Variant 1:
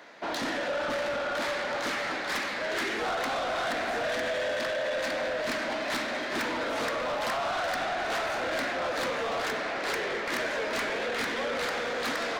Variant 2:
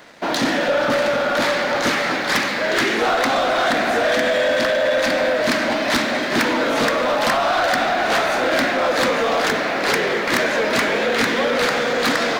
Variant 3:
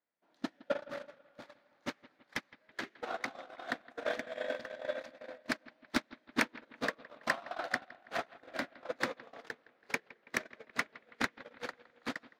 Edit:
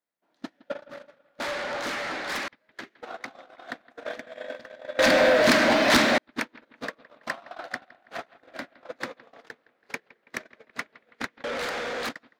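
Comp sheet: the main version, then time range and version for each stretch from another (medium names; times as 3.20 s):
3
1.40–2.48 s: from 1
4.99–6.18 s: from 2
11.44–12.09 s: from 1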